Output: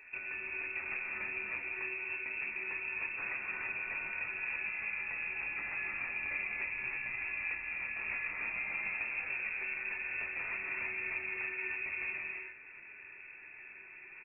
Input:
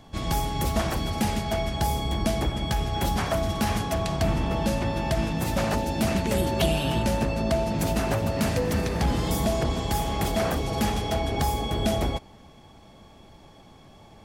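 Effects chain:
floating-point word with a short mantissa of 2 bits
downward compressor 6 to 1, threshold −34 dBFS, peak gain reduction 15 dB
voice inversion scrambler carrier 2,600 Hz
on a send: ambience of single reflections 10 ms −8.5 dB, 24 ms −9 dB
on the sum: reverb whose tail is shaped and stops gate 360 ms rising, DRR −1 dB
level −6 dB

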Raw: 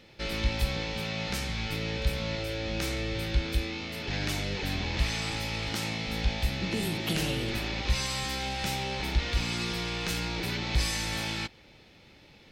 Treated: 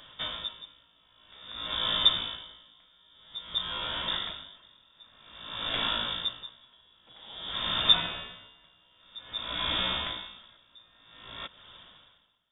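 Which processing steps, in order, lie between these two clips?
loose part that buzzes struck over −26 dBFS, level −25 dBFS
voice inversion scrambler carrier 3,600 Hz
tremolo with a sine in dB 0.51 Hz, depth 35 dB
level +4 dB

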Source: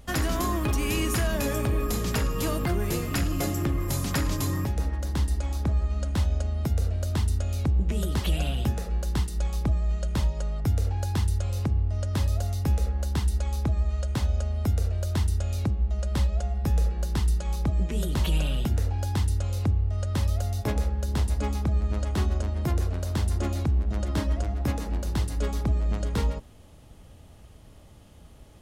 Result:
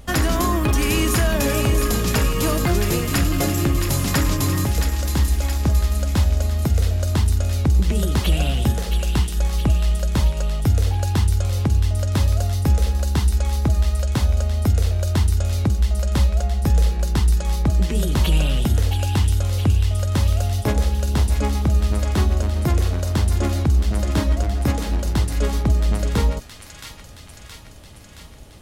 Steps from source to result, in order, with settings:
delay with a high-pass on its return 671 ms, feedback 63%, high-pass 1,900 Hz, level −5 dB
level +7 dB

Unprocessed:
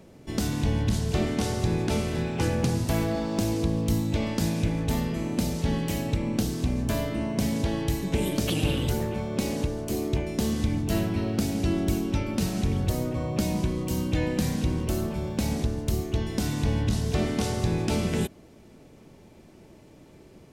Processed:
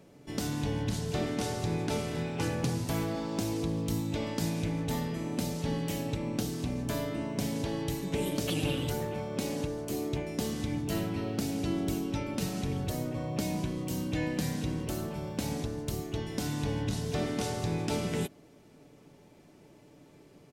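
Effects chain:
low-shelf EQ 74 Hz −10 dB
comb filter 6.9 ms, depth 35%
level −4.5 dB

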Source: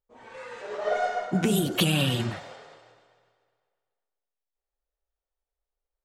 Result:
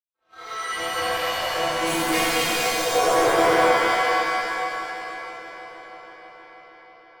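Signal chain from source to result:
adaptive Wiener filter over 41 samples
camcorder AGC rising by 68 dB per second
downward expander −51 dBFS
in parallel at +2 dB: brickwall limiter −21.5 dBFS, peak gain reduction 11 dB
on the sum: leveller curve on the samples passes 3
high-pass filter sweep 1,200 Hz → 570 Hz, 0:00.76–0:01.55
speed change −16%
stiff-string resonator 160 Hz, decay 0.36 s, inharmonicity 0.008
power curve on the samples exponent 2
on a send: bucket-brigade delay 319 ms, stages 4,096, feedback 78%, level −17.5 dB
on the sum: reverb with rising layers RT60 2.5 s, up +7 semitones, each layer −2 dB, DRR −12 dB

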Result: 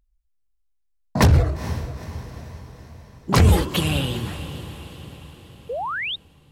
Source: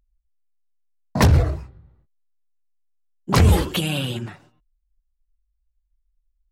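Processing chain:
feedback delay with all-pass diffusion 464 ms, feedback 53%, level −12.5 dB
sound drawn into the spectrogram rise, 0:05.69–0:06.16, 440–3,900 Hz −27 dBFS

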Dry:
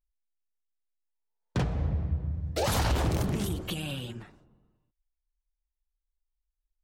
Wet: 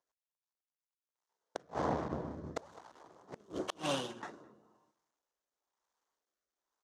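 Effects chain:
running median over 9 samples
0:02.08–0:04.23: downward expander −31 dBFS
asymmetric clip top −34.5 dBFS, bottom −23 dBFS
high-pass filter 400 Hz 12 dB per octave
high-frequency loss of the air 52 metres
gate with flip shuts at −30 dBFS, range −34 dB
graphic EQ with 15 bands 1,000 Hz +7 dB, 2,500 Hz −9 dB, 6,300 Hz +9 dB
slap from a distant wall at 36 metres, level −20 dB
rotating-speaker cabinet horn 5.5 Hz, later 1 Hz, at 0:00.56
level +13 dB

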